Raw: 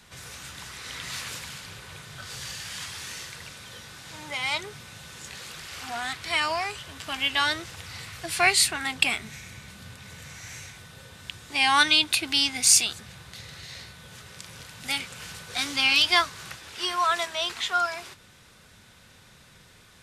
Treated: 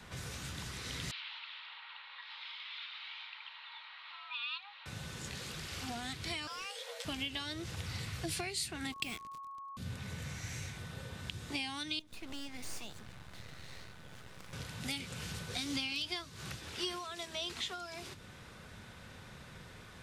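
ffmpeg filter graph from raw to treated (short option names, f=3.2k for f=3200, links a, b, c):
-filter_complex "[0:a]asettb=1/sr,asplit=3[a][b][c];[a]atrim=end=1.114[d];[b]atrim=start=1.11:end=4.86,asetpts=PTS-STARTPTS,afade=t=in:d=0.004:c=qsin,afade=t=out:st=3.746:d=0.004:c=qsin,equalizer=f=1.3k:t=o:w=0.74:g=-6,afreqshift=400,asuperpass=centerf=1900:order=12:qfactor=0.63[e];[c]atrim=start=4.856[f];[d][e]acrossfade=d=0.004:c1=hsin:c2=qsin[g];[g][f]acrossfade=d=0.004:c1=qsin:c2=hsin,asettb=1/sr,asplit=3[h][i][j];[h]atrim=end=6.474[k];[i]atrim=start=6.47:end=7.05,asetpts=PTS-STARTPTS,afade=t=in:d=0.004:c=qsin,afade=t=out:st=0.576:d=0.004:c=qsin,afreqshift=390,volume=22.5dB,asoftclip=hard,volume=-22.5dB[l];[j]atrim=start=7.046[m];[k][l]acrossfade=d=0.004:c1=hsin:c2=qsin[n];[n][m]acrossfade=d=0.004:c1=qsin:c2=hsin,asettb=1/sr,asplit=3[o][p][q];[o]atrim=end=8.924[r];[p]atrim=start=8.92:end=9.77,asetpts=PTS-STARTPTS,afade=t=in:d=0.004:c=qsin,afade=t=out:st=0.846:d=0.004:c=qsin,acrusher=bits=4:mix=0:aa=0.5,aeval=exprs='val(0)+0.02*sin(2*PI*1100*n/s)':c=same[s];[q]atrim=start=9.766[t];[r][s]acrossfade=d=0.004:c1=hsin:c2=qsin[u];[u][t]acrossfade=d=0.004:c1=qsin:c2=hsin,asettb=1/sr,asplit=3[v][w][x];[v]atrim=end=11.994[y];[w]atrim=start=11.99:end=14.53,asetpts=PTS-STARTPTS,afade=t=in:d=0.004:c=qsin,afade=t=out:st=2.536:d=0.004:c=qsin,acompressor=threshold=-34dB:ratio=2:attack=3.2:release=140:knee=1:detection=peak,aeval=exprs='max(val(0),0)':c=same,aeval=exprs='(tanh(14.1*val(0)+0.7)-tanh(0.7))/14.1':c=same[z];[x]atrim=start=14.526[aa];[y][z]acrossfade=d=0.004:c1=hsin:c2=qsin[ab];[ab][aa]acrossfade=d=0.004:c1=qsin:c2=hsin,acompressor=threshold=-30dB:ratio=5,highshelf=f=3.1k:g=-10.5,acrossover=split=430|3000[ac][ad][ae];[ad]acompressor=threshold=-55dB:ratio=4[af];[ac][af][ae]amix=inputs=3:normalize=0,volume=4dB"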